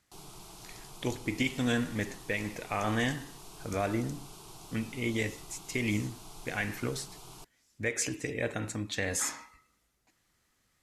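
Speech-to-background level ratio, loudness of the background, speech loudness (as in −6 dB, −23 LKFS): 15.5 dB, −49.0 LKFS, −33.5 LKFS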